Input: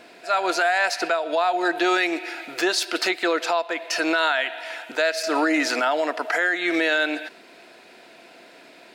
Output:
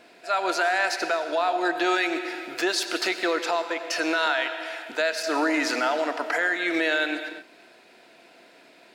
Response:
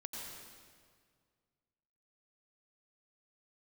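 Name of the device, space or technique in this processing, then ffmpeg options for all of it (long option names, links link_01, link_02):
keyed gated reverb: -filter_complex "[0:a]asplit=3[link_01][link_02][link_03];[1:a]atrim=start_sample=2205[link_04];[link_02][link_04]afir=irnorm=-1:irlink=0[link_05];[link_03]apad=whole_len=394358[link_06];[link_05][link_06]sidechaingate=range=-33dB:threshold=-45dB:ratio=16:detection=peak,volume=-3.5dB[link_07];[link_01][link_07]amix=inputs=2:normalize=0,asettb=1/sr,asplit=3[link_08][link_09][link_10];[link_08]atrim=end=4.264[link_11];[link_09]atrim=start=4.26:end=4.86,asetpts=PTS-STARTPTS,afade=type=in:duration=0.004:curve=qsin,afade=type=out:start_time=0.596:duration=0.004:curve=qsin,highpass=frequency=270:width=0.5412,highpass=frequency=270:width=1.3066[link_12];[link_10]atrim=start=4.856[link_13];[link_11][link_12]acrossfade=duration=0.004:curve1=hsin:curve2=qsin[link_14];[link_14][link_13]acrossfade=duration=0.004:curve1=qsin:curve2=hsin,volume=-5.5dB"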